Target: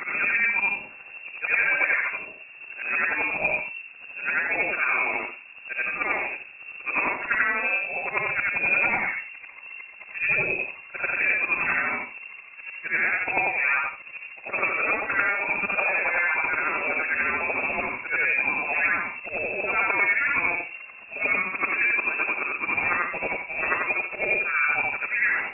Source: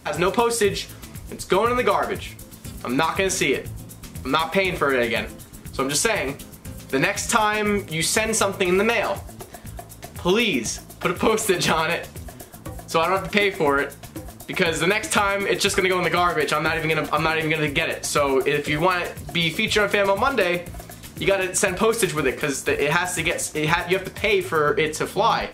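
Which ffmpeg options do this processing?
-af "afftfilt=real='re':imag='-im':win_size=8192:overlap=0.75,lowpass=f=2400:t=q:w=0.5098,lowpass=f=2400:t=q:w=0.6013,lowpass=f=2400:t=q:w=0.9,lowpass=f=2400:t=q:w=2.563,afreqshift=-2800,volume=1.12"

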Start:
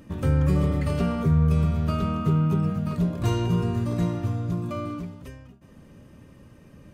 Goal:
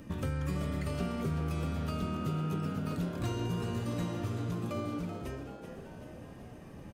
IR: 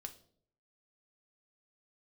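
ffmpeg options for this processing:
-filter_complex "[0:a]acrossover=split=870|1900|4600[s0][s1][s2][s3];[s0]acompressor=threshold=0.02:ratio=4[s4];[s1]acompressor=threshold=0.00316:ratio=4[s5];[s2]acompressor=threshold=0.00251:ratio=4[s6];[s3]acompressor=threshold=0.002:ratio=4[s7];[s4][s5][s6][s7]amix=inputs=4:normalize=0,asplit=7[s8][s9][s10][s11][s12][s13][s14];[s9]adelay=382,afreqshift=110,volume=0.316[s15];[s10]adelay=764,afreqshift=220,volume=0.178[s16];[s11]adelay=1146,afreqshift=330,volume=0.0989[s17];[s12]adelay=1528,afreqshift=440,volume=0.0556[s18];[s13]adelay=1910,afreqshift=550,volume=0.0313[s19];[s14]adelay=2292,afreqshift=660,volume=0.0174[s20];[s8][s15][s16][s17][s18][s19][s20]amix=inputs=7:normalize=0"

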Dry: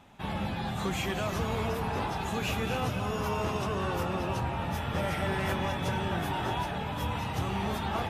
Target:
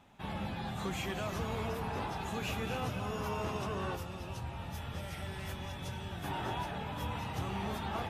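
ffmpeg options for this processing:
-filter_complex "[0:a]asettb=1/sr,asplit=3[s0][s1][s2];[s0]atrim=end=3.954[s3];[s1]atrim=start=3.95:end=6.24,asetpts=PTS-STARTPTS,afade=t=in:d=0.004:c=qsin,afade=t=out:st=2.286:d=0.004:c=qsin,acrossover=split=120|3000[s4][s5][s6];[s5]acompressor=threshold=0.0126:ratio=6[s7];[s4][s7][s6]amix=inputs=3:normalize=0[s8];[s2]atrim=start=6.236[s9];[s3][s8]acrossfade=d=0.004:c1=hsin:c2=qsin[s10];[s10][s9]acrossfade=d=0.004:c1=qsin:c2=hsin,volume=0.531"

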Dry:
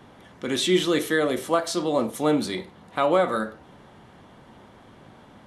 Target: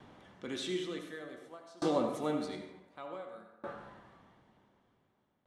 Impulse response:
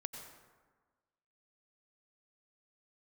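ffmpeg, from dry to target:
-filter_complex "[0:a]lowpass=8000,asplit=5[s0][s1][s2][s3][s4];[s1]adelay=240,afreqshift=150,volume=0.0668[s5];[s2]adelay=480,afreqshift=300,volume=0.0403[s6];[s3]adelay=720,afreqshift=450,volume=0.024[s7];[s4]adelay=960,afreqshift=600,volume=0.0145[s8];[s0][s5][s6][s7][s8]amix=inputs=5:normalize=0[s9];[1:a]atrim=start_sample=2205,asetrate=57330,aresample=44100[s10];[s9][s10]afir=irnorm=-1:irlink=0,aeval=exprs='val(0)*pow(10,-27*if(lt(mod(0.55*n/s,1),2*abs(0.55)/1000),1-mod(0.55*n/s,1)/(2*abs(0.55)/1000),(mod(0.55*n/s,1)-2*abs(0.55)/1000)/(1-2*abs(0.55)/1000))/20)':c=same"

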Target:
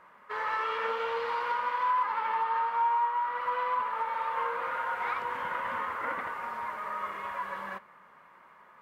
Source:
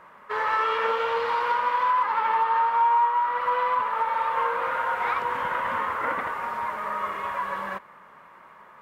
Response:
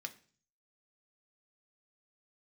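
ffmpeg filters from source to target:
-filter_complex "[0:a]asplit=2[s0][s1];[1:a]atrim=start_sample=2205,asetrate=37044,aresample=44100[s2];[s1][s2]afir=irnorm=-1:irlink=0,volume=0.531[s3];[s0][s3]amix=inputs=2:normalize=0,volume=0.355"

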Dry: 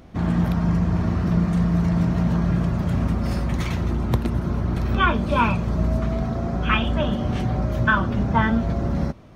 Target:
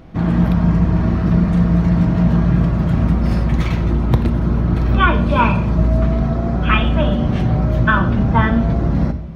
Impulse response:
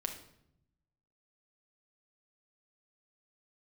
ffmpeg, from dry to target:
-filter_complex "[0:a]asplit=2[s0][s1];[1:a]atrim=start_sample=2205,lowpass=5100,lowshelf=f=180:g=5.5[s2];[s1][s2]afir=irnorm=-1:irlink=0,volume=1.12[s3];[s0][s3]amix=inputs=2:normalize=0,volume=0.794"

